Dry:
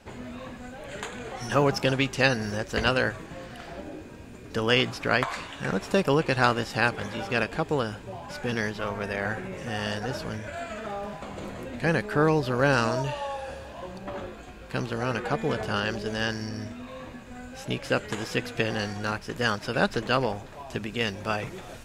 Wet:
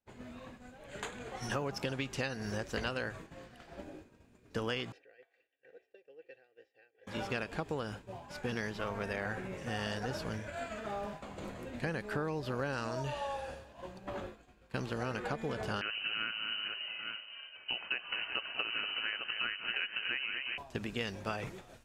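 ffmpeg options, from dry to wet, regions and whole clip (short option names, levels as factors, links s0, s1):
-filter_complex "[0:a]asettb=1/sr,asplit=3[s0][s1][s2];[s0]atrim=end=4.924[s3];[s1]atrim=start=4.92:end=7.07,asetpts=PTS-STARTPTS,afade=t=in:d=0.004:c=qsin,afade=t=out:st=2.146:d=0.004:c=qsin,aecho=1:1:2.6:0.71,atrim=end_sample=94815,acompressor=threshold=0.0447:ratio=16:attack=3.2:release=140:knee=1:detection=peak,asplit=3[s4][s5][s6];[s4]bandpass=f=530:t=q:w=8,volume=1[s7];[s5]bandpass=f=1840:t=q:w=8,volume=0.501[s8];[s6]bandpass=f=2480:t=q:w=8,volume=0.355[s9];[s7][s8][s9]amix=inputs=3:normalize=0[s10];[s2]atrim=start=7.066[s11];[s3][s10]acrossfade=d=0.004:c1=hsin:c2=qsin[s12];[s12][s11]acrossfade=d=0.004:c1=qsin:c2=hsin,asettb=1/sr,asplit=3[s13][s14][s15];[s13]atrim=end=15.814[s16];[s14]atrim=start=15.81:end=20.58,asetpts=PTS-STARTPTS,afade=t=in:d=0.004:c=qsin,afade=t=out:st=4.766:d=0.004:c=qsin,lowpass=f=2600:t=q:w=0.5098,lowpass=f=2600:t=q:w=0.6013,lowpass=f=2600:t=q:w=0.9,lowpass=f=2600:t=q:w=2.563,afreqshift=-3100,aecho=1:1:195|236|377|839:0.112|0.316|0.168|0.316,atrim=end_sample=210357[s17];[s15]atrim=start=20.576[s18];[s16][s17]acrossfade=d=0.004:c1=hsin:c2=qsin[s19];[s19][s18]acrossfade=d=0.004:c1=qsin:c2=hsin,agate=range=0.0224:threshold=0.0224:ratio=3:detection=peak,acompressor=threshold=0.0398:ratio=12,volume=0.631"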